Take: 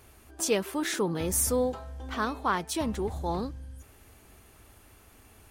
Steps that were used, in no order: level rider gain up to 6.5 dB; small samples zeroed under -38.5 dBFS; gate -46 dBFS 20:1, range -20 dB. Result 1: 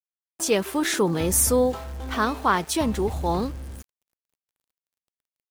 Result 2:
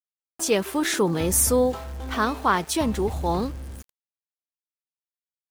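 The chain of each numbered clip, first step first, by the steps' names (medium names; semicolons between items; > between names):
level rider > small samples zeroed > gate; level rider > gate > small samples zeroed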